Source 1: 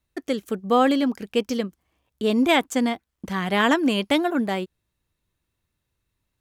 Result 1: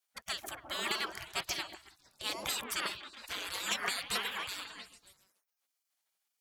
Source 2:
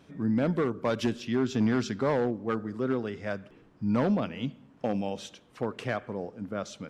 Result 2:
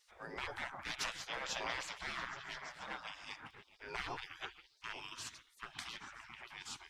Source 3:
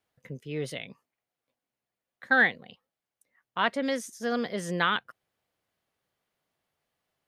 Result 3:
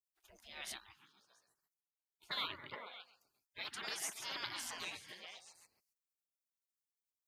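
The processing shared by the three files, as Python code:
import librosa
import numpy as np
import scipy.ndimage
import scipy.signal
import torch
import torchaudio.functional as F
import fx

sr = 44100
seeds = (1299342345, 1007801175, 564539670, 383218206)

y = fx.echo_stepped(x, sr, ms=137, hz=540.0, octaves=0.7, feedback_pct=70, wet_db=-2)
y = fx.spec_gate(y, sr, threshold_db=-25, keep='weak')
y = y * librosa.db_to_amplitude(2.5)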